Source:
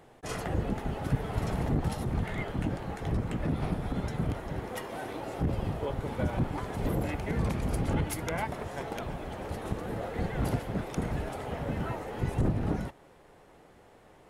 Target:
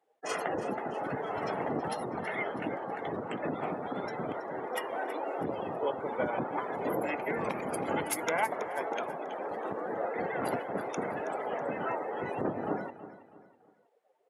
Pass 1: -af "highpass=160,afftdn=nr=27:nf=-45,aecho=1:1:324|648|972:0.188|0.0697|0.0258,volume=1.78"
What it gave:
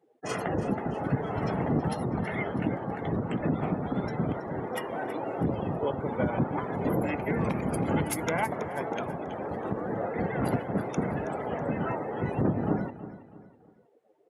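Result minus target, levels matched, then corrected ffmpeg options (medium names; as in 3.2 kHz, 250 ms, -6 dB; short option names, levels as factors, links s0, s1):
125 Hz band +10.5 dB
-af "highpass=410,afftdn=nr=27:nf=-45,aecho=1:1:324|648|972:0.188|0.0697|0.0258,volume=1.78"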